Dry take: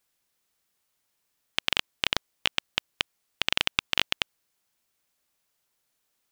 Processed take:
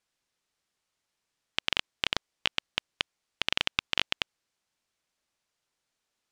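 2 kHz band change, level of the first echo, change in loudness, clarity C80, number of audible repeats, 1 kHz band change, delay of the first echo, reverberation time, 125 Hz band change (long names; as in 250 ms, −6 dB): −2.5 dB, no echo audible, −2.5 dB, no reverb audible, no echo audible, −2.5 dB, no echo audible, no reverb audible, −2.5 dB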